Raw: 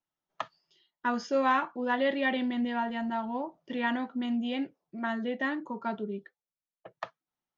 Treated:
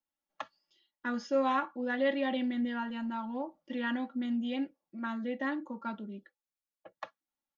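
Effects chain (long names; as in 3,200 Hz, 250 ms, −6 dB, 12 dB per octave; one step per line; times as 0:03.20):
comb filter 3.6 ms, depth 77%
level −6 dB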